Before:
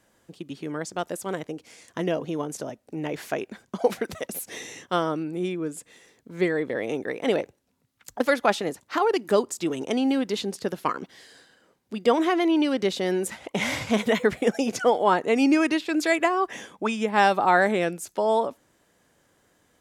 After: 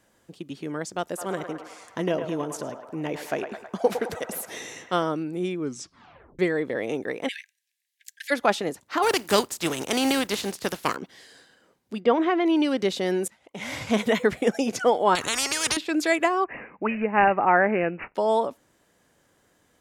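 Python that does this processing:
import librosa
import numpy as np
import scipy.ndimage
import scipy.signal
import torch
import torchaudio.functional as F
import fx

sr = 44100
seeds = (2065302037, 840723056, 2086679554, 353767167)

y = fx.echo_banded(x, sr, ms=107, feedback_pct=75, hz=1100.0, wet_db=-6, at=(1.16, 5.02), fade=0.02)
y = fx.cheby1_highpass(y, sr, hz=1600.0, order=10, at=(7.27, 8.3), fade=0.02)
y = fx.spec_flatten(y, sr, power=0.57, at=(9.02, 10.95), fade=0.02)
y = fx.lowpass(y, sr, hz=2800.0, slope=12, at=(12.0, 12.46))
y = fx.spectral_comp(y, sr, ratio=10.0, at=(15.15, 15.77))
y = fx.resample_bad(y, sr, factor=8, down='none', up='filtered', at=(16.44, 18.15))
y = fx.edit(y, sr, fx.tape_stop(start_s=5.6, length_s=0.79),
    fx.fade_in_from(start_s=13.28, length_s=0.62, curve='qua', floor_db=-20.5), tone=tone)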